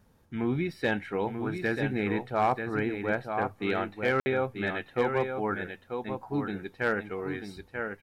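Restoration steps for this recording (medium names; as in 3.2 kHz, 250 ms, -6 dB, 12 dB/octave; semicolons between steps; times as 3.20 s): clip repair -17.5 dBFS; room tone fill 4.20–4.26 s; inverse comb 938 ms -6.5 dB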